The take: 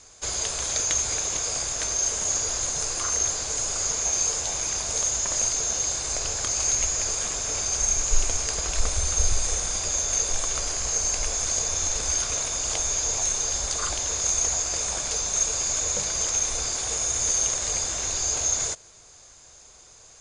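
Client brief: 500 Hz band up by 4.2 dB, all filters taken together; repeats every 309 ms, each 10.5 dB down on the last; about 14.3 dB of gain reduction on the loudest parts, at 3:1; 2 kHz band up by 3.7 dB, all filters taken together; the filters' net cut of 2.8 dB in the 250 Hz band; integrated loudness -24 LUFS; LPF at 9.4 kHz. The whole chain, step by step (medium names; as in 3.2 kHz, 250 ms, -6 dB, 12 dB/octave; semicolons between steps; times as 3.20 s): low-pass 9.4 kHz; peaking EQ 250 Hz -7.5 dB; peaking EQ 500 Hz +6.5 dB; peaking EQ 2 kHz +4.5 dB; compression 3:1, threshold -35 dBFS; feedback delay 309 ms, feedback 30%, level -10.5 dB; trim +8.5 dB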